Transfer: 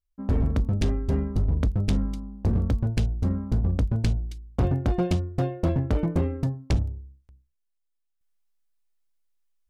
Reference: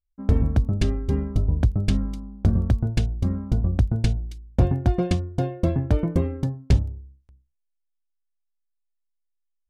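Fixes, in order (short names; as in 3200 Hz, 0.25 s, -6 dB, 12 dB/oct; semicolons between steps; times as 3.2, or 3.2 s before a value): clip repair -18 dBFS; gain 0 dB, from 8.21 s -6.5 dB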